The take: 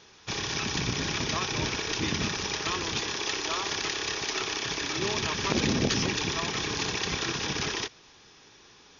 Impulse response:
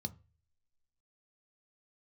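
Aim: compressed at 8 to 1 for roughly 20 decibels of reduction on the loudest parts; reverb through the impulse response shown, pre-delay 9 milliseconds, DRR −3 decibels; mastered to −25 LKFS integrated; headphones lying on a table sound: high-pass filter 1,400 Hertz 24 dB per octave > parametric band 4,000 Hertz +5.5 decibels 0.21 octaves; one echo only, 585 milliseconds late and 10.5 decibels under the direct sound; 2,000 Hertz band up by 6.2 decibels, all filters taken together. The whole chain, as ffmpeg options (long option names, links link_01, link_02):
-filter_complex "[0:a]equalizer=frequency=2000:width_type=o:gain=8,acompressor=threshold=-42dB:ratio=8,aecho=1:1:585:0.299,asplit=2[link_01][link_02];[1:a]atrim=start_sample=2205,adelay=9[link_03];[link_02][link_03]afir=irnorm=-1:irlink=0,volume=5.5dB[link_04];[link_01][link_04]amix=inputs=2:normalize=0,highpass=frequency=1400:width=0.5412,highpass=frequency=1400:width=1.3066,equalizer=frequency=4000:width_type=o:width=0.21:gain=5.5,volume=12dB"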